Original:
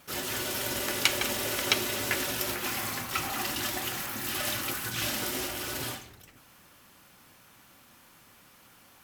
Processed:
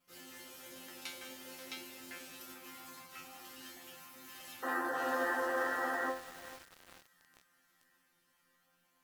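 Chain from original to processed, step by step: painted sound noise, 4.62–6.11 s, 240–2000 Hz -16 dBFS; chord resonator F3 fifth, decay 0.39 s; on a send: feedback echo behind a high-pass 641 ms, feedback 61%, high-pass 3.8 kHz, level -16 dB; on the sum: bit-crushed delay 444 ms, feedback 80%, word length 6-bit, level -13 dB; trim -3 dB

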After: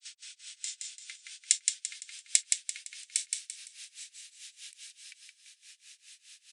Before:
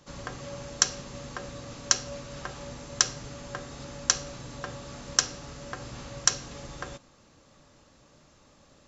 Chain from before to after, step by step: gliding tape speed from 124% -> 148%; inverse Chebyshev high-pass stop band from 810 Hz, stop band 60 dB; treble shelf 4.9 kHz -6 dB; upward compressor, threshold -44 dBFS; granulator 154 ms, grains 4.8 per s, spray 16 ms, pitch spread up and down by 0 st; frequency shift +29 Hz; on a send: feedback delay 170 ms, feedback 37%, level -3.5 dB; on the sum: resampled via 22.05 kHz; trim +6 dB

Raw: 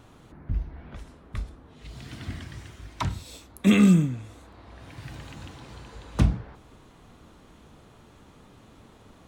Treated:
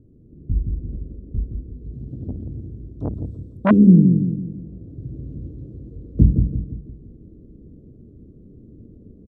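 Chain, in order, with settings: inverse Chebyshev low-pass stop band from 810 Hz, stop band 40 dB; feedback delay 169 ms, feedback 44%, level -5.5 dB; level rider gain up to 6 dB; 2.03–3.71 s: transformer saturation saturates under 860 Hz; trim +2 dB

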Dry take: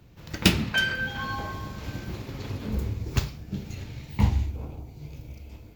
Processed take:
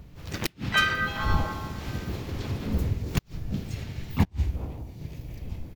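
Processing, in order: wind noise 98 Hz -38 dBFS; inverted gate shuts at -12 dBFS, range -38 dB; harmony voices -4 st -4 dB, -3 st -16 dB, +4 st -7 dB

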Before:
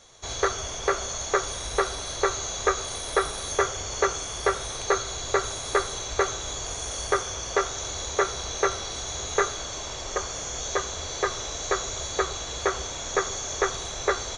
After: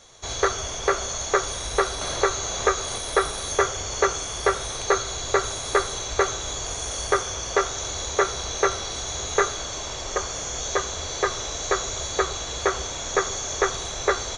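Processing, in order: 2.01–2.98 s: three bands compressed up and down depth 40%; trim +2.5 dB

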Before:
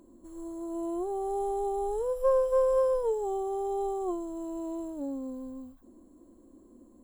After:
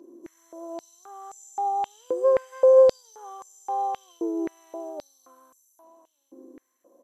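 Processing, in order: knee-point frequency compression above 4 kHz 1.5:1; delay 1163 ms -15.5 dB; step-sequenced high-pass 3.8 Hz 360–7000 Hz

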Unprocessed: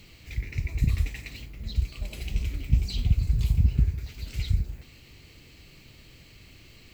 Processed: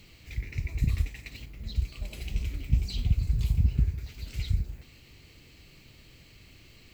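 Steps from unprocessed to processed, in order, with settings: 1.00–1.48 s: transient shaper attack +4 dB, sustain -3 dB; trim -2.5 dB

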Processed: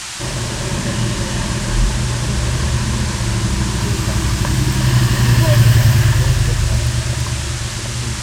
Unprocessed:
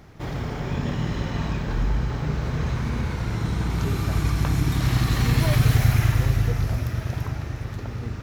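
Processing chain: rippled EQ curve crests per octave 1.3, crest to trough 11 dB; band noise 760–8700 Hz -33 dBFS; trim +5 dB

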